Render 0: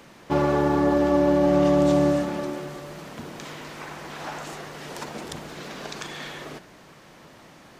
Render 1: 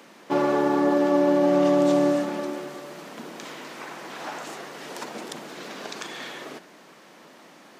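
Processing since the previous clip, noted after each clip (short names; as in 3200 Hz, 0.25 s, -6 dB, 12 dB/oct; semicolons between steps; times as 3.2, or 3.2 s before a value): HPF 200 Hz 24 dB/oct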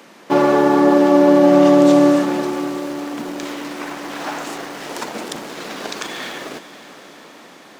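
in parallel at -7 dB: sample gate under -36 dBFS; on the sum: diffused feedback echo 0.521 s, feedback 62%, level -14 dB; gain +5 dB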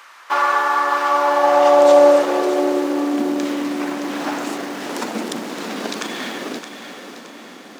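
high-pass sweep 1200 Hz -> 220 Hz, 1.01–3.52; thinning echo 0.619 s, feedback 41%, level -9.5 dB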